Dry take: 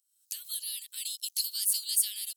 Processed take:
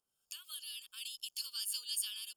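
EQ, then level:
moving average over 22 samples
+14.0 dB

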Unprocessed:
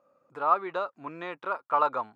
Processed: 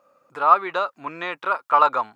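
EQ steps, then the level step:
tilt shelving filter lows −5 dB, about 910 Hz
+7.5 dB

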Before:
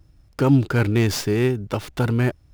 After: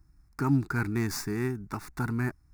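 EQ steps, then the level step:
parametric band 100 Hz −8 dB 0.8 octaves
phaser with its sweep stopped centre 1,300 Hz, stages 4
−4.5 dB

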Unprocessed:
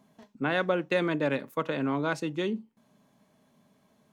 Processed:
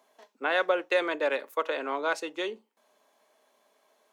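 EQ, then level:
high-pass filter 420 Hz 24 dB per octave
+2.5 dB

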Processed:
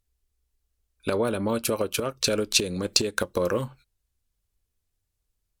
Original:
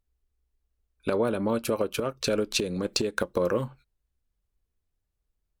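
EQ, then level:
parametric band 96 Hz +6 dB 0.31 octaves
parametric band 9,700 Hz +8.5 dB 2.9 octaves
0.0 dB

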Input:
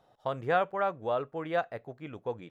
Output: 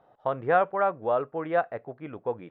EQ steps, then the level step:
low-pass filter 1,800 Hz 12 dB per octave
low-shelf EQ 160 Hz −8 dB
+5.5 dB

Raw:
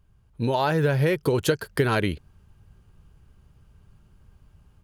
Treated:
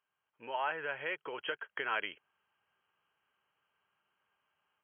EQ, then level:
high-pass filter 960 Hz 12 dB per octave
linear-phase brick-wall low-pass 3,300 Hz
−6.0 dB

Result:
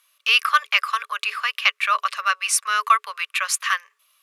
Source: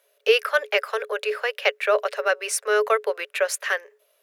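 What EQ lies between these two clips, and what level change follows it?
four-pole ladder high-pass 1,100 Hz, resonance 85%
flat-topped bell 5,200 Hz +12.5 dB 2.8 octaves
+6.0 dB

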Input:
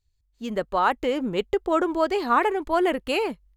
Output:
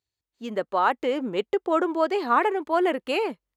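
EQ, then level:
high-pass filter 230 Hz 12 dB per octave
high-shelf EQ 4,600 Hz −6.5 dB
0.0 dB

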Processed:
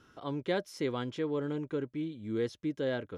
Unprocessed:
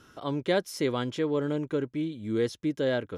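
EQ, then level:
high-shelf EQ 7,900 Hz −10.5 dB
notch filter 600 Hz, Q 20
−5.0 dB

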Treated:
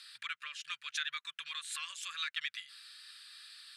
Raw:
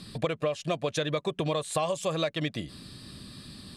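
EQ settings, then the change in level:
elliptic high-pass filter 1,400 Hz, stop band 50 dB
high-shelf EQ 3,000 Hz −8 dB
+2.5 dB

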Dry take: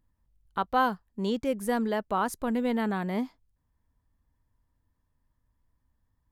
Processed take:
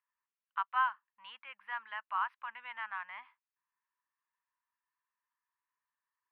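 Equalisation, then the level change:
elliptic band-pass filter 1,000–2,800 Hz, stop band 50 dB
−2.0 dB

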